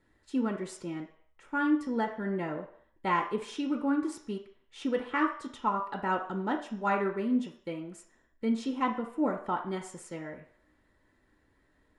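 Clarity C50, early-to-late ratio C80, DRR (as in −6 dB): 8.5 dB, 12.5 dB, 1.5 dB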